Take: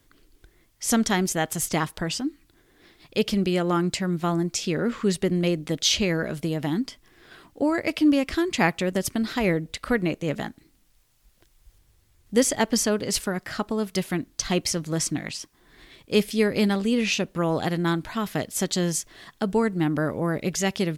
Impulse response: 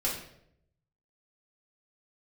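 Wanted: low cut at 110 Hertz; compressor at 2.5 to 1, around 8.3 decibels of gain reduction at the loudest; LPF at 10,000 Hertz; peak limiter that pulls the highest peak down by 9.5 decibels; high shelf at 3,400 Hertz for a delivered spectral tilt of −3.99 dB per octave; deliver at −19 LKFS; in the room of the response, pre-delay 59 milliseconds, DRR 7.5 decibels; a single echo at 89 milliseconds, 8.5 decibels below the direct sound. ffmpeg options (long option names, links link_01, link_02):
-filter_complex "[0:a]highpass=110,lowpass=10000,highshelf=frequency=3400:gain=7,acompressor=threshold=-27dB:ratio=2.5,alimiter=limit=-21dB:level=0:latency=1,aecho=1:1:89:0.376,asplit=2[link_01][link_02];[1:a]atrim=start_sample=2205,adelay=59[link_03];[link_02][link_03]afir=irnorm=-1:irlink=0,volume=-14.5dB[link_04];[link_01][link_04]amix=inputs=2:normalize=0,volume=11dB"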